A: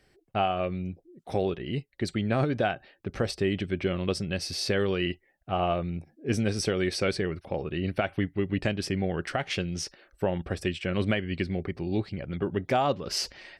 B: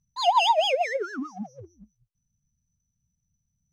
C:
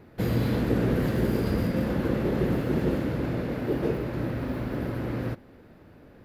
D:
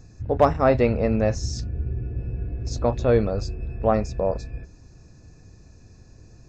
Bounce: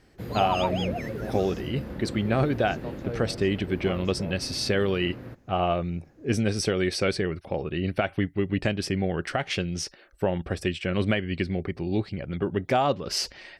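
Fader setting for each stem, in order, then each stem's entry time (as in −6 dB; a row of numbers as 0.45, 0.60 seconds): +2.0, −9.5, −10.5, −17.0 decibels; 0.00, 0.15, 0.00, 0.00 seconds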